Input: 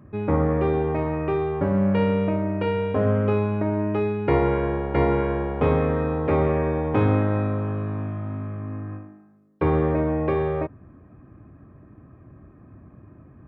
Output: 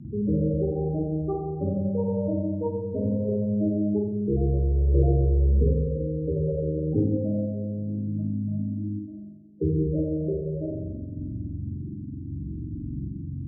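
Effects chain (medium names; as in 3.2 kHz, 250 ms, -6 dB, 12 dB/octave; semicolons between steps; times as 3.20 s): in parallel at +0.5 dB: compressor with a negative ratio -34 dBFS; on the sum: loudest bins only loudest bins 8; spring tank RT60 1.3 s, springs 44 ms, chirp 50 ms, DRR -3 dB; rotary cabinet horn 0.75 Hz; trim -1.5 dB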